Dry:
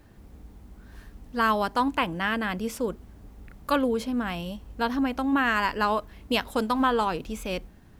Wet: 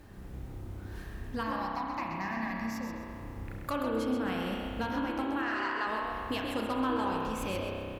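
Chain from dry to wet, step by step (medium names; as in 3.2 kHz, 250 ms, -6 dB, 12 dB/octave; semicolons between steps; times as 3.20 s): compression 4:1, threshold -36 dBFS, peak gain reduction 15 dB; one-sided clip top -29.5 dBFS; 1.43–2.93 s: static phaser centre 2.1 kHz, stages 8; 5.42–5.87 s: band-pass 590–6400 Hz; frequency-shifting echo 130 ms, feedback 30%, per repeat +55 Hz, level -6.5 dB; spring tank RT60 2.6 s, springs 31 ms, chirp 60 ms, DRR -0.5 dB; trim +1.5 dB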